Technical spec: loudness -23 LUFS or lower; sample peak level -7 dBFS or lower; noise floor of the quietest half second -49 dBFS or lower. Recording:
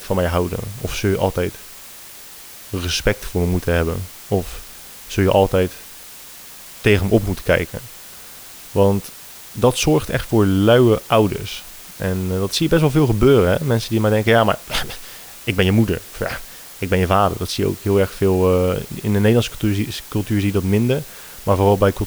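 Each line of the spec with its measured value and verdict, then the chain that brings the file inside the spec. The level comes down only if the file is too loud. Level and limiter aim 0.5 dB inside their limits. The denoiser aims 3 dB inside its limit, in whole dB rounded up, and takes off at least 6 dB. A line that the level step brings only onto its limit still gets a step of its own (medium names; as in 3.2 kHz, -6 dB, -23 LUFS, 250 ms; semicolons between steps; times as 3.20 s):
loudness -18.5 LUFS: fail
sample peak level -2.5 dBFS: fail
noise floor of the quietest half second -38 dBFS: fail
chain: noise reduction 9 dB, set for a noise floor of -38 dBFS; trim -5 dB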